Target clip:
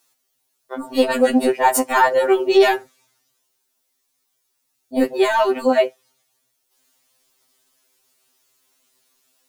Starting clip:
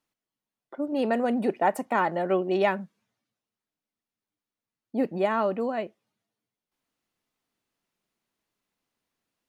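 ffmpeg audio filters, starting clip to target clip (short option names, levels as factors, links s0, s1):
-af "apsyclip=13.3,bass=f=250:g=-11,treble=f=4000:g=11,afftfilt=real='re*2.45*eq(mod(b,6),0)':imag='im*2.45*eq(mod(b,6),0)':win_size=2048:overlap=0.75,volume=0.447"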